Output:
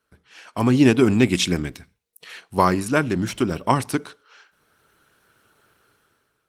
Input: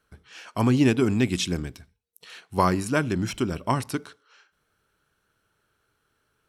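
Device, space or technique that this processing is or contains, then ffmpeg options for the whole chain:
video call: -filter_complex "[0:a]asettb=1/sr,asplit=3[s0][s1][s2];[s0]atrim=end=1.324[s3];[s1]atrim=start=1.32:end=2.4,asetpts=PTS-STARTPTS,afade=t=in:d=0.004:c=qsin,afade=t=out:st=1.076:d=0.004:c=qsin,equalizer=f=2100:t=o:w=0.43:g=4.5[s4];[s2]atrim=start=2.396[s5];[s3][s4]acrossfade=d=0.004:c1=hsin:c2=qsin[s6];[s6][s5]acrossfade=d=0.004:c1=qsin:c2=hsin,highpass=f=120:p=1,dynaudnorm=f=260:g=5:m=5.31,volume=0.891" -ar 48000 -c:a libopus -b:a 20k

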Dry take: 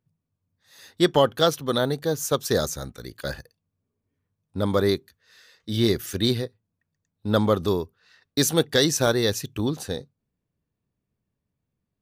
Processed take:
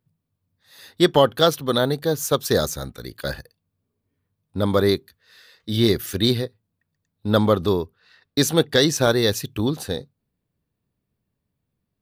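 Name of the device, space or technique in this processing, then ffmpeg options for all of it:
exciter from parts: -filter_complex "[0:a]asplit=2[s0][s1];[s1]highpass=f=4500:w=0.5412,highpass=f=4500:w=1.3066,asoftclip=type=tanh:threshold=0.02,highpass=f=2900:w=0.5412,highpass=f=2900:w=1.3066,volume=0.447[s2];[s0][s2]amix=inputs=2:normalize=0,asettb=1/sr,asplit=3[s3][s4][s5];[s3]atrim=end=7.524[s6];[s4]atrim=start=7.52:end=9.1,asetpts=PTS-STARTPTS,afade=t=in:d=0.004:c=qsin,afade=t=out:st=1.576:d=0.004:c=qsin,highshelf=f=6700:g=-5.5[s7];[s5]atrim=start=9.096[s8];[s6][s7]acrossfade=d=0.004:c1=hsin:c2=qsin[s9];[s9][s8]acrossfade=d=0.004:c1=qsin:c2=hsin,volume=1.41"

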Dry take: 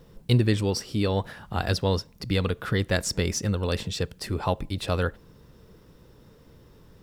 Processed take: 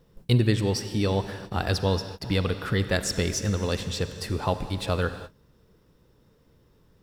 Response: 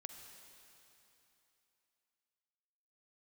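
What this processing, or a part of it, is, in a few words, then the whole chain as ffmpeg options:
keyed gated reverb: -filter_complex "[0:a]asplit=3[s0][s1][s2];[1:a]atrim=start_sample=2205[s3];[s1][s3]afir=irnorm=-1:irlink=0[s4];[s2]apad=whole_len=310002[s5];[s4][s5]sidechaingate=range=0.0224:threshold=0.00562:ratio=16:detection=peak,volume=2.82[s6];[s0][s6]amix=inputs=2:normalize=0,volume=0.398"

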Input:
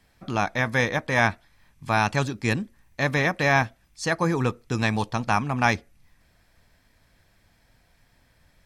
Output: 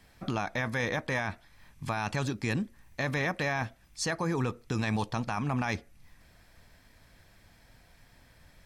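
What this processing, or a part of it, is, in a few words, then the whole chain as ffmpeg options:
stacked limiters: -af "alimiter=limit=0.237:level=0:latency=1:release=99,alimiter=limit=0.119:level=0:latency=1:release=24,alimiter=limit=0.0631:level=0:latency=1:release=356,volume=1.41"

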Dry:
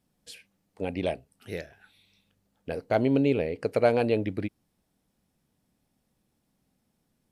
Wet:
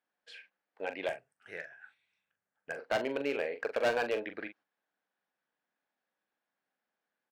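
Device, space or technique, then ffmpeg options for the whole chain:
megaphone: -filter_complex "[0:a]highpass=650,lowpass=2800,equalizer=f=1600:t=o:w=0.34:g=9.5,asoftclip=type=hard:threshold=0.0596,asplit=2[s0][s1];[s1]adelay=42,volume=0.355[s2];[s0][s2]amix=inputs=2:normalize=0,asettb=1/sr,asplit=3[s3][s4][s5];[s3]atrim=end=1.084[s6];[s4]atrim=start=1.08:end=2.79,asetpts=PTS-STARTPTS,afade=t=in:d=0.004:c=qsin,afade=t=out:st=1.706:d=0.004:c=qsin,equalizer=f=125:t=o:w=1:g=11,equalizer=f=250:t=o:w=1:g=-5,equalizer=f=500:t=o:w=1:g=-4,equalizer=f=1000:t=o:w=1:g=-3,equalizer=f=4000:t=o:w=1:g=-11,equalizer=f=8000:t=o:w=1:g=11[s7];[s5]atrim=start=2.786[s8];[s6][s7]acrossfade=d=0.004:c1=hsin:c2=qsin[s9];[s9][s8]acrossfade=d=0.004:c1=qsin:c2=hsin,agate=range=0.501:threshold=0.00112:ratio=16:detection=peak"

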